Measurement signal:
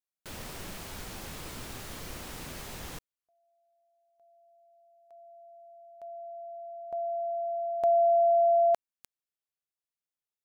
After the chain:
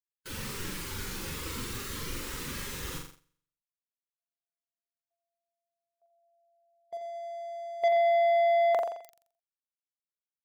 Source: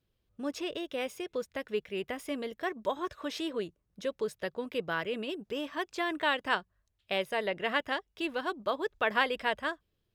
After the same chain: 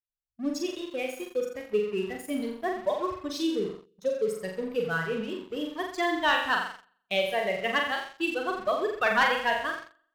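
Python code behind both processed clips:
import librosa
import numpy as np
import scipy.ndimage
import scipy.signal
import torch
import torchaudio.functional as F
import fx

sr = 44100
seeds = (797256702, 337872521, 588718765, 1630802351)

y = fx.bin_expand(x, sr, power=2.0)
y = fx.room_flutter(y, sr, wall_m=7.4, rt60_s=0.65)
y = fx.leveller(y, sr, passes=2)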